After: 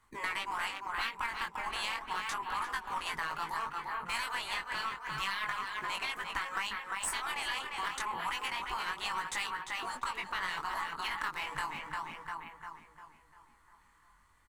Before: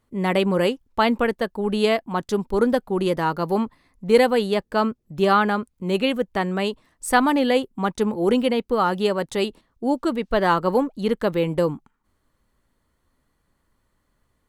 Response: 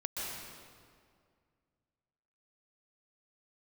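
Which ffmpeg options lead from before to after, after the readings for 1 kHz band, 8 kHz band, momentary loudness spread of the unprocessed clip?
−10.5 dB, −3.5 dB, 7 LU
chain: -filter_complex "[0:a]afftfilt=real='re*lt(hypot(re,im),0.224)':imag='im*lt(hypot(re,im),0.224)':win_size=1024:overlap=0.75,asplit=2[link_01][link_02];[link_02]adelay=349,lowpass=frequency=3100:poles=1,volume=-6.5dB,asplit=2[link_03][link_04];[link_04]adelay=349,lowpass=frequency=3100:poles=1,volume=0.53,asplit=2[link_05][link_06];[link_06]adelay=349,lowpass=frequency=3100:poles=1,volume=0.53,asplit=2[link_07][link_08];[link_08]adelay=349,lowpass=frequency=3100:poles=1,volume=0.53,asplit=2[link_09][link_10];[link_10]adelay=349,lowpass=frequency=3100:poles=1,volume=0.53,asplit=2[link_11][link_12];[link_12]adelay=349,lowpass=frequency=3100:poles=1,volume=0.53,asplit=2[link_13][link_14];[link_14]adelay=349,lowpass=frequency=3100:poles=1,volume=0.53[link_15];[link_03][link_05][link_07][link_09][link_11][link_13][link_15]amix=inputs=7:normalize=0[link_16];[link_01][link_16]amix=inputs=2:normalize=0,acrossover=split=160[link_17][link_18];[link_18]acompressor=threshold=-28dB:ratio=2[link_19];[link_17][link_19]amix=inputs=2:normalize=0,equalizer=frequency=570:width_type=o:width=0.77:gain=-13,asplit=2[link_20][link_21];[link_21]acrusher=samples=14:mix=1:aa=0.000001:lfo=1:lforange=22.4:lforate=0.7,volume=-9dB[link_22];[link_20][link_22]amix=inputs=2:normalize=0,flanger=delay=18:depth=4.8:speed=0.32,equalizer=frequency=125:width_type=o:width=1:gain=-6,equalizer=frequency=250:width_type=o:width=1:gain=-7,equalizer=frequency=1000:width_type=o:width=1:gain=12,equalizer=frequency=2000:width_type=o:width=1:gain=8,equalizer=frequency=8000:width_type=o:width=1:gain=8,aeval=exprs='0.501*(cos(1*acos(clip(val(0)/0.501,-1,1)))-cos(1*PI/2))+0.0178*(cos(8*acos(clip(val(0)/0.501,-1,1)))-cos(8*PI/2))':channel_layout=same,acompressor=threshold=-35dB:ratio=3"

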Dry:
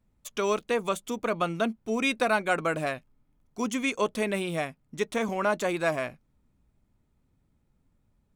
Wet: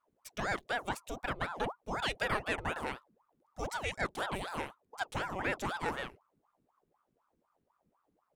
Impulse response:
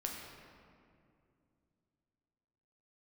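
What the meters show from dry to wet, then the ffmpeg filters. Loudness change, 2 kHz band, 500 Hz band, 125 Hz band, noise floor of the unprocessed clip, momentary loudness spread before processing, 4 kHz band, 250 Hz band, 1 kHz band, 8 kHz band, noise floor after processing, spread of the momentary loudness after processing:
−8.0 dB, −5.5 dB, −12.0 dB, −5.0 dB, −71 dBFS, 8 LU, −4.5 dB, −12.5 dB, −5.5 dB, −9.5 dB, −80 dBFS, 8 LU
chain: -af "bandreject=frequency=60:width_type=h:width=6,bandreject=frequency=120:width_type=h:width=6,bandreject=frequency=180:width_type=h:width=6,aeval=exprs='val(0)*sin(2*PI*700*n/s+700*0.75/4*sin(2*PI*4*n/s))':channel_layout=same,volume=-5.5dB"

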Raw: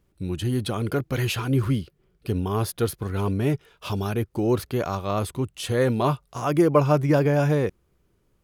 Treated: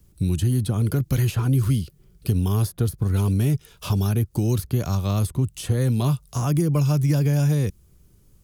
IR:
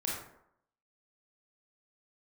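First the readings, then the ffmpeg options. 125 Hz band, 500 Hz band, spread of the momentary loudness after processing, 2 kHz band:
+6.0 dB, −7.5 dB, 6 LU, −6.0 dB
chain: -filter_complex "[0:a]bass=frequency=250:gain=12,treble=frequency=4000:gain=15,acrossover=split=650|1400[link_01][link_02][link_03];[link_03]alimiter=limit=-12.5dB:level=0:latency=1:release=418[link_04];[link_01][link_02][link_04]amix=inputs=3:normalize=0,acrossover=split=230|2100[link_05][link_06][link_07];[link_05]acompressor=threshold=-21dB:ratio=4[link_08];[link_06]acompressor=threshold=-31dB:ratio=4[link_09];[link_07]acompressor=threshold=-38dB:ratio=4[link_10];[link_08][link_09][link_10]amix=inputs=3:normalize=0,volume=1dB"

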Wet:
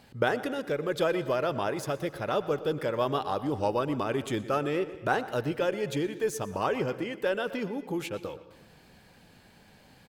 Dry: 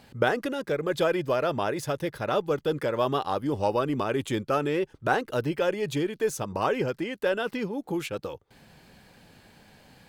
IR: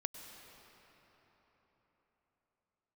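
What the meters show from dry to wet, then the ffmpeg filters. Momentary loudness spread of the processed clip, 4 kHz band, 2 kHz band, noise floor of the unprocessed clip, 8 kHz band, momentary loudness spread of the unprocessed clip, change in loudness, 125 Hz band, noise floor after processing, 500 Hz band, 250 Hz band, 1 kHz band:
5 LU, −2.5 dB, −2.5 dB, −61 dBFS, −2.5 dB, 5 LU, −2.0 dB, −2.5 dB, −57 dBFS, −2.0 dB, −2.0 dB, −2.0 dB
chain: -filter_complex "[0:a]asplit=2[link_01][link_02];[link_02]adelay=121,lowpass=frequency=4200:poles=1,volume=-16dB,asplit=2[link_03][link_04];[link_04]adelay=121,lowpass=frequency=4200:poles=1,volume=0.52,asplit=2[link_05][link_06];[link_06]adelay=121,lowpass=frequency=4200:poles=1,volume=0.52,asplit=2[link_07][link_08];[link_08]adelay=121,lowpass=frequency=4200:poles=1,volume=0.52,asplit=2[link_09][link_10];[link_10]adelay=121,lowpass=frequency=4200:poles=1,volume=0.52[link_11];[link_01][link_03][link_05][link_07][link_09][link_11]amix=inputs=6:normalize=0,asplit=2[link_12][link_13];[1:a]atrim=start_sample=2205,afade=type=out:start_time=0.34:duration=0.01,atrim=end_sample=15435[link_14];[link_13][link_14]afir=irnorm=-1:irlink=0,volume=-2.5dB[link_15];[link_12][link_15]amix=inputs=2:normalize=0,volume=-6.5dB"

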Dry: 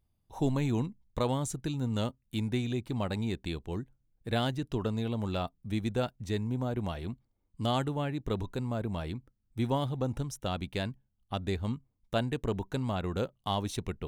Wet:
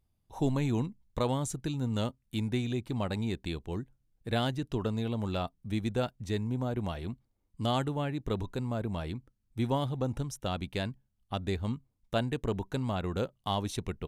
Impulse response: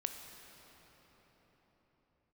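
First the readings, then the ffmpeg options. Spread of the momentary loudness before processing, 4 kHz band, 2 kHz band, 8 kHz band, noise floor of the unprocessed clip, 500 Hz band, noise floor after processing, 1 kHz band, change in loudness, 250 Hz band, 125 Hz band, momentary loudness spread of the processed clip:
9 LU, 0.0 dB, 0.0 dB, 0.0 dB, −77 dBFS, 0.0 dB, −77 dBFS, 0.0 dB, 0.0 dB, 0.0 dB, 0.0 dB, 9 LU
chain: -af "aresample=32000,aresample=44100"

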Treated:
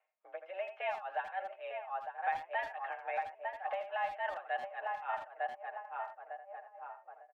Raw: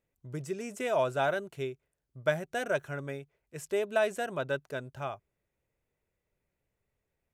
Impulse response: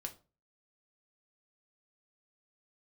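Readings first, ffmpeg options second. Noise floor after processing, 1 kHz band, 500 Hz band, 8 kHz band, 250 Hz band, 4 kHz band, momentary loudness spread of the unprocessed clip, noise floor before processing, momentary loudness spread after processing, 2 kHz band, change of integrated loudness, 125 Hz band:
−62 dBFS, +2.0 dB, −9.5 dB, below −25 dB, below −25 dB, −9.0 dB, 14 LU, −84 dBFS, 12 LU, −4.0 dB, −6.5 dB, below −30 dB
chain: -filter_complex "[0:a]asplit=2[link_01][link_02];[link_02]adelay=902,lowpass=frequency=1300:poles=1,volume=-9.5dB,asplit=2[link_03][link_04];[link_04]adelay=902,lowpass=frequency=1300:poles=1,volume=0.54,asplit=2[link_05][link_06];[link_06]adelay=902,lowpass=frequency=1300:poles=1,volume=0.54,asplit=2[link_07][link_08];[link_08]adelay=902,lowpass=frequency=1300:poles=1,volume=0.54,asplit=2[link_09][link_10];[link_10]adelay=902,lowpass=frequency=1300:poles=1,volume=0.54,asplit=2[link_11][link_12];[link_12]adelay=902,lowpass=frequency=1300:poles=1,volume=0.54[link_13];[link_03][link_05][link_07][link_09][link_11][link_13]amix=inputs=6:normalize=0[link_14];[link_01][link_14]amix=inputs=2:normalize=0,acompressor=threshold=-32dB:ratio=2,alimiter=level_in=8dB:limit=-24dB:level=0:latency=1:release=33,volume=-8dB,aecho=1:1:6.7:0.55,highpass=frequency=410:width_type=q:width=0.5412,highpass=frequency=410:width_type=q:width=1.307,lowpass=frequency=2600:width_type=q:width=0.5176,lowpass=frequency=2600:width_type=q:width=0.7071,lowpass=frequency=2600:width_type=q:width=1.932,afreqshift=180,tremolo=f=3.5:d=0.91,asplit=2[link_15][link_16];[link_16]adelay=80,highpass=300,lowpass=3400,asoftclip=type=hard:threshold=-38.5dB,volume=-9dB[link_17];[link_15][link_17]amix=inputs=2:normalize=0,volume=6.5dB"

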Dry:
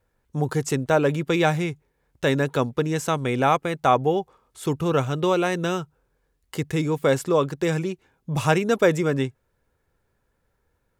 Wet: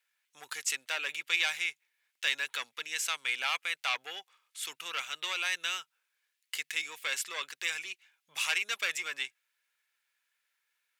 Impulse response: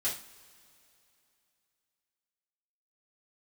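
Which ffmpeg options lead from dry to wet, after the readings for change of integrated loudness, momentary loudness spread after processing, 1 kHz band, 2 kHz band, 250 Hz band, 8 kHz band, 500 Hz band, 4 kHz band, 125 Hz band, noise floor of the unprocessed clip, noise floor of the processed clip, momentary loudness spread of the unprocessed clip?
−9.5 dB, 10 LU, −16.5 dB, −1.5 dB, −38.0 dB, 0.0 dB, −29.0 dB, +2.0 dB, below −40 dB, −72 dBFS, −83 dBFS, 11 LU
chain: -af "asoftclip=type=tanh:threshold=-15dB,highpass=frequency=2400:width_type=q:width=1.7"

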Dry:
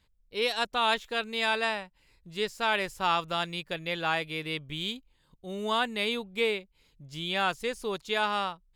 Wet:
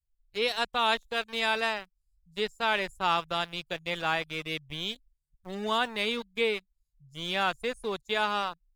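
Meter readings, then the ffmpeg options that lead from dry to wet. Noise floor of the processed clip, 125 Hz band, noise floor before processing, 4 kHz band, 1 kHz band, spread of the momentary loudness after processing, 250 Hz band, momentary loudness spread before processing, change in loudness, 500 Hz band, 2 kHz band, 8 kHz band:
−80 dBFS, −2.0 dB, −68 dBFS, 0.0 dB, 0.0 dB, 9 LU, −1.0 dB, 10 LU, 0.0 dB, −0.5 dB, 0.0 dB, −1.5 dB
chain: -filter_complex "[0:a]acrossover=split=130|6100[link_01][link_02][link_03];[link_02]aeval=exprs='val(0)*gte(abs(val(0)),0.015)':channel_layout=same[link_04];[link_01][link_04][link_03]amix=inputs=3:normalize=0,afftdn=noise_reduction=15:noise_floor=-49"

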